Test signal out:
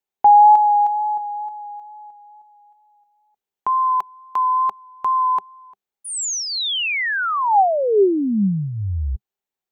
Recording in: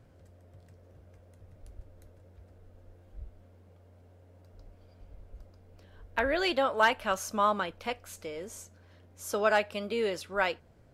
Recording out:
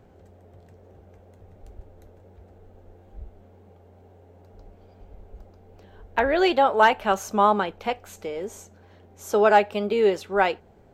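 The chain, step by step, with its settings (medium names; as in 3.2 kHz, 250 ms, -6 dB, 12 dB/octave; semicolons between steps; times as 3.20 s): graphic EQ with 31 bands 125 Hz -6 dB, 200 Hz +6 dB, 400 Hz +10 dB, 800 Hz +10 dB, 5 kHz -5 dB, 10 kHz -11 dB; wow and flutter 19 cents; trim +4 dB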